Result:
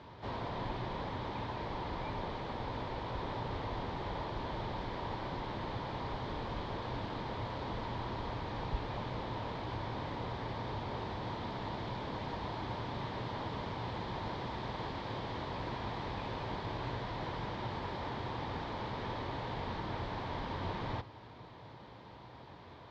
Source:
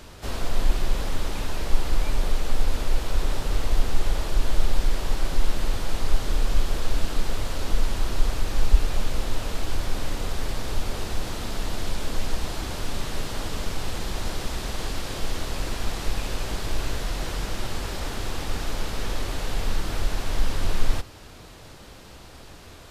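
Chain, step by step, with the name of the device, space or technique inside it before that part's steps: guitar cabinet (speaker cabinet 98–3600 Hz, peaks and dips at 120 Hz +7 dB, 940 Hz +9 dB, 1400 Hz -5 dB, 2700 Hz -8 dB); gain -6 dB

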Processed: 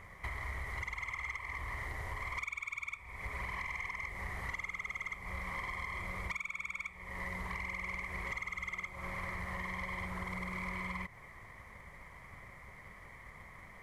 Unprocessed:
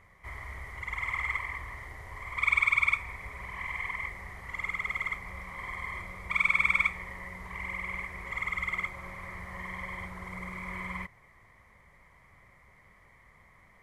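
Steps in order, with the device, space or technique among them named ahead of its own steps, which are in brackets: dynamic EQ 1600 Hz, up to -4 dB, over -45 dBFS, Q 2.7; drum-bus smash (transient shaper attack +5 dB, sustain 0 dB; compressor 10:1, threshold -41 dBFS, peak gain reduction 23.5 dB; soft clip -36.5 dBFS, distortion -18 dB); gain +6 dB

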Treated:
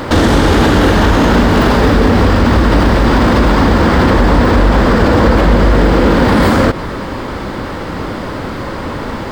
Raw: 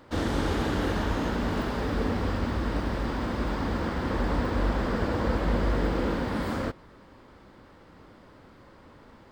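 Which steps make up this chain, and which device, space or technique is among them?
loud club master (compressor 2.5:1, threshold -29 dBFS, peak gain reduction 6 dB; hard clip -23.5 dBFS, distortion -26 dB; maximiser +32 dB); gain -1 dB

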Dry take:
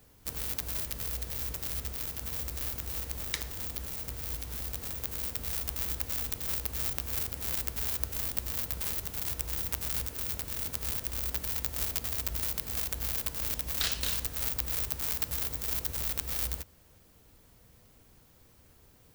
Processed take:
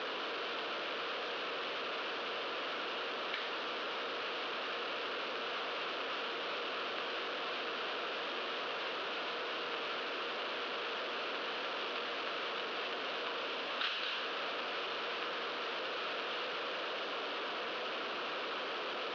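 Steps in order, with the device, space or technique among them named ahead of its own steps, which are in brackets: digital answering machine (BPF 320–3100 Hz; delta modulation 32 kbps, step -32.5 dBFS; speaker cabinet 460–3800 Hz, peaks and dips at 840 Hz -7 dB, 1300 Hz +3 dB, 2000 Hz -7 dB, 2900 Hz +3 dB); gain +2 dB

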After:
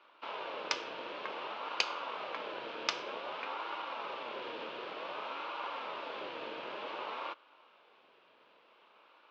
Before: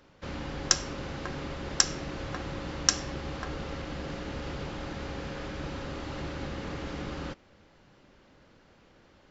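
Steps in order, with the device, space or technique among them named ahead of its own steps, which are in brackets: voice changer toy (ring modulator with a swept carrier 630 Hz, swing 40%, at 0.54 Hz; speaker cabinet 570–3600 Hz, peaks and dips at 740 Hz -10 dB, 1900 Hz -9 dB, 2800 Hz +4 dB); gain +3.5 dB

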